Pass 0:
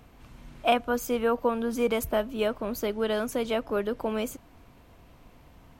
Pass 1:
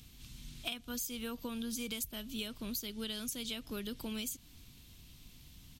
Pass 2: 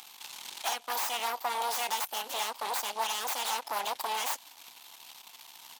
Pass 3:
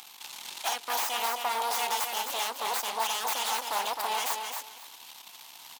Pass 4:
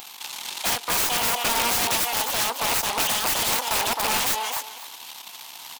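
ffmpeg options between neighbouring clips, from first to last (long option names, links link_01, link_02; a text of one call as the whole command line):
ffmpeg -i in.wav -af "firequalizer=gain_entry='entry(170,0);entry(560,-18);entry(3500,11)':delay=0.05:min_phase=1,acompressor=threshold=-34dB:ratio=10,volume=-2dB" out.wav
ffmpeg -i in.wav -af "aeval=exprs='0.0841*(cos(1*acos(clip(val(0)/0.0841,-1,1)))-cos(1*PI/2))+0.0376*(cos(8*acos(clip(val(0)/0.0841,-1,1)))-cos(8*PI/2))':channel_layout=same,asoftclip=type=hard:threshold=-33.5dB,highpass=frequency=860:width_type=q:width=4.9,volume=8.5dB" out.wav
ffmpeg -i in.wav -af "aecho=1:1:262|524|786:0.531|0.106|0.0212,volume=1.5dB" out.wav
ffmpeg -i in.wav -af "aeval=exprs='(mod(17.8*val(0)+1,2)-1)/17.8':channel_layout=same,volume=8dB" out.wav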